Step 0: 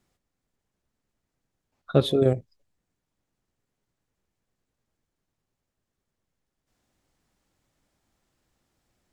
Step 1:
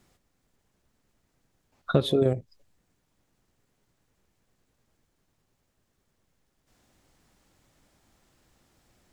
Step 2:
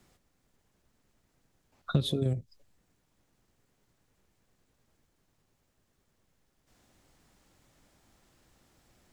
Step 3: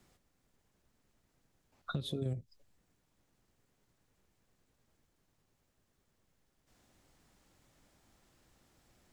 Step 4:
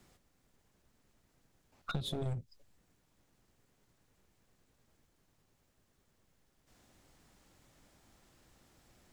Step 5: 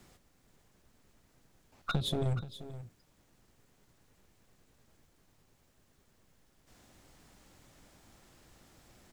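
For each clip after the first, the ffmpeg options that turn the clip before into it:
ffmpeg -i in.wav -af "acompressor=threshold=-29dB:ratio=4,volume=8.5dB" out.wav
ffmpeg -i in.wav -filter_complex "[0:a]acrossover=split=230|3000[link_01][link_02][link_03];[link_02]acompressor=threshold=-38dB:ratio=4[link_04];[link_01][link_04][link_03]amix=inputs=3:normalize=0" out.wav
ffmpeg -i in.wav -af "alimiter=limit=-22.5dB:level=0:latency=1:release=436,volume=-3dB" out.wav
ffmpeg -i in.wav -af "aeval=exprs='clip(val(0),-1,0.01)':channel_layout=same,volume=3dB" out.wav
ffmpeg -i in.wav -af "aecho=1:1:479:0.2,volume=5dB" out.wav

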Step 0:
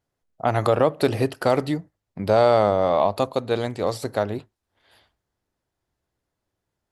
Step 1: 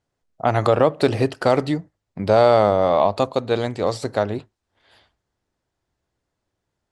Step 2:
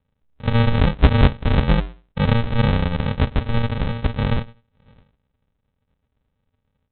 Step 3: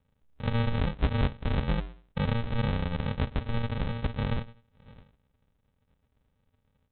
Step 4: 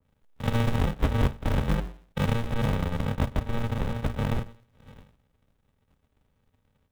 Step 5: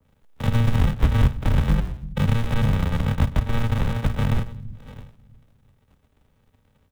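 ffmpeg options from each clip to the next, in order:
ffmpeg -i in.wav -af "lowpass=frequency=9000:width=0.5412,lowpass=frequency=9000:width=1.3066,volume=2.5dB" out.wav
ffmpeg -i in.wav -af "afftfilt=real='re*(1-between(b*sr/4096,410,1800))':imag='im*(1-between(b*sr/4096,410,1800))':win_size=4096:overlap=0.75,bandreject=frequency=60:width_type=h:width=6,bandreject=frequency=120:width_type=h:width=6,bandreject=frequency=180:width_type=h:width=6,bandreject=frequency=240:width_type=h:width=6,bandreject=frequency=300:width_type=h:width=6,bandreject=frequency=360:width_type=h:width=6,bandreject=frequency=420:width_type=h:width=6,aresample=8000,acrusher=samples=23:mix=1:aa=0.000001,aresample=44100,volume=9dB" out.wav
ffmpeg -i in.wav -af "acompressor=threshold=-33dB:ratio=2" out.wav
ffmpeg -i in.wav -filter_complex "[0:a]bandreject=frequency=60:width_type=h:width=6,bandreject=frequency=120:width_type=h:width=6,bandreject=frequency=180:width_type=h:width=6,acrossover=split=260|1300[link_01][link_02][link_03];[link_01]acrusher=bits=2:mode=log:mix=0:aa=0.000001[link_04];[link_04][link_02][link_03]amix=inputs=3:normalize=0,adynamicequalizer=threshold=0.00447:dfrequency=1800:dqfactor=0.7:tfrequency=1800:tqfactor=0.7:attack=5:release=100:ratio=0.375:range=2.5:mode=cutabove:tftype=highshelf,volume=2.5dB" out.wav
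ffmpeg -i in.wav -filter_complex "[0:a]acrossover=split=210|930[link_01][link_02][link_03];[link_01]aecho=1:1:333|666|999|1332:0.2|0.0778|0.0303|0.0118[link_04];[link_02]acompressor=threshold=-40dB:ratio=6[link_05];[link_03]alimiter=level_in=5dB:limit=-24dB:level=0:latency=1:release=160,volume=-5dB[link_06];[link_04][link_05][link_06]amix=inputs=3:normalize=0,volume=7dB" out.wav

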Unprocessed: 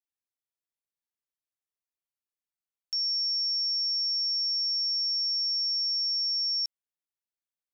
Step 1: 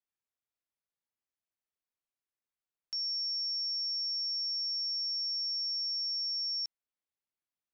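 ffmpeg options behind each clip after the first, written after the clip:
ffmpeg -i in.wav -af "highshelf=frequency=5400:gain=-11.5" out.wav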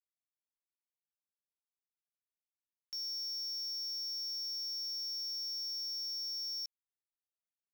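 ffmpeg -i in.wav -af "acrusher=bits=6:mix=0:aa=0.000001,volume=-6dB" out.wav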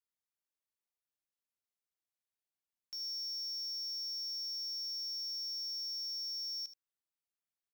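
ffmpeg -i in.wav -af "aecho=1:1:77:0.237,volume=-2dB" out.wav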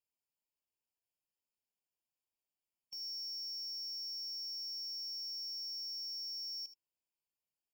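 ffmpeg -i in.wav -af "afftfilt=real='re*eq(mod(floor(b*sr/1024/1100),2),0)':imag='im*eq(mod(floor(b*sr/1024/1100),2),0)':win_size=1024:overlap=0.75" out.wav

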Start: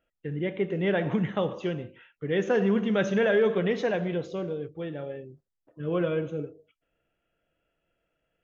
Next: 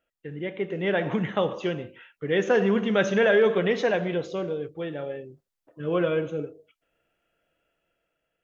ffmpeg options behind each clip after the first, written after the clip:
ffmpeg -i in.wav -af "lowshelf=frequency=270:gain=-7.5,dynaudnorm=framelen=260:gausssize=7:maxgain=5dB" out.wav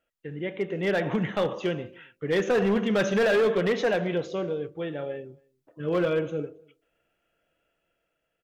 ffmpeg -i in.wav -filter_complex "[0:a]asoftclip=type=hard:threshold=-18.5dB,asplit=2[link_01][link_02];[link_02]adelay=274.1,volume=-29dB,highshelf=frequency=4000:gain=-6.17[link_03];[link_01][link_03]amix=inputs=2:normalize=0" out.wav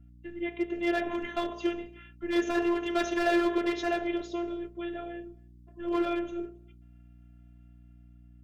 ffmpeg -i in.wav -af "afftfilt=real='hypot(re,im)*cos(PI*b)':imag='0':win_size=512:overlap=0.75,aeval=exprs='val(0)+0.00224*(sin(2*PI*60*n/s)+sin(2*PI*2*60*n/s)/2+sin(2*PI*3*60*n/s)/3+sin(2*PI*4*60*n/s)/4+sin(2*PI*5*60*n/s)/5)':channel_layout=same,volume=1dB" out.wav

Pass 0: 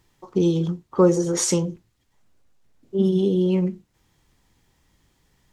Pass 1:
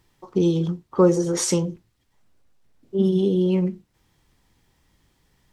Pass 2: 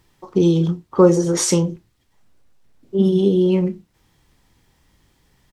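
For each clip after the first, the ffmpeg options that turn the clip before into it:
ffmpeg -i in.wav -af "equalizer=frequency=6800:width=6:gain=-4" out.wav
ffmpeg -i in.wav -filter_complex "[0:a]asplit=2[link_01][link_02];[link_02]adelay=30,volume=-13dB[link_03];[link_01][link_03]amix=inputs=2:normalize=0,volume=4dB" out.wav

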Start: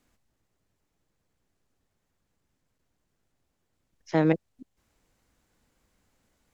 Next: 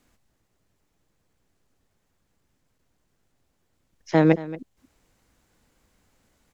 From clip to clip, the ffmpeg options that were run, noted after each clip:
ffmpeg -i in.wav -af "aecho=1:1:229:0.141,volume=5dB" out.wav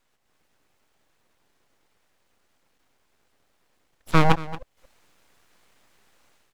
ffmpeg -i in.wav -af "bass=frequency=250:gain=-12,treble=frequency=4000:gain=-6,dynaudnorm=framelen=100:gausssize=5:maxgain=10.5dB,aeval=exprs='abs(val(0))':channel_layout=same" out.wav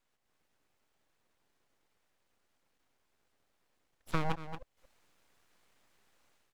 ffmpeg -i in.wav -af "acompressor=threshold=-17dB:ratio=6,volume=-9dB" out.wav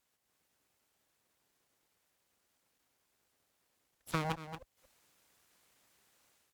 ffmpeg -i in.wav -af "highpass=43,aemphasis=mode=production:type=cd,volume=-1dB" out.wav

